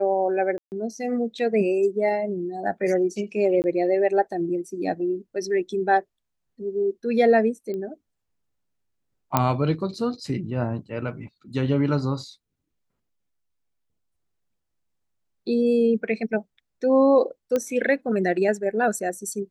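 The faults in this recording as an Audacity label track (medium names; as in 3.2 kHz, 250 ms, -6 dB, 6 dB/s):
0.580000	0.720000	dropout 139 ms
3.620000	3.640000	dropout 19 ms
7.740000	7.740000	pop -22 dBFS
9.370000	9.370000	pop -5 dBFS
17.560000	17.560000	pop -12 dBFS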